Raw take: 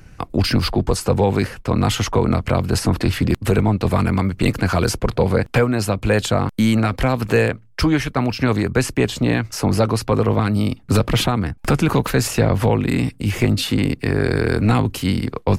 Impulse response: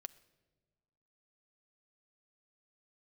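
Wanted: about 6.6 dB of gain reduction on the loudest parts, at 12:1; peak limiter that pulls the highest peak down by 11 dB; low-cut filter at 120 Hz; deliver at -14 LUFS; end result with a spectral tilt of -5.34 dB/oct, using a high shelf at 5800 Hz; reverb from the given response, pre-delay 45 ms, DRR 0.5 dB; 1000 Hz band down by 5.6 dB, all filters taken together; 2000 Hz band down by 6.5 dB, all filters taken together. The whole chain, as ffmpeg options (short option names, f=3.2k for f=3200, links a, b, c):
-filter_complex "[0:a]highpass=120,equalizer=f=1k:t=o:g=-6,equalizer=f=2k:t=o:g=-6,highshelf=f=5.8k:g=-4,acompressor=threshold=-20dB:ratio=12,alimiter=limit=-21.5dB:level=0:latency=1,asplit=2[a][b];[1:a]atrim=start_sample=2205,adelay=45[c];[b][c]afir=irnorm=-1:irlink=0,volume=4.5dB[d];[a][d]amix=inputs=2:normalize=0,volume=14dB"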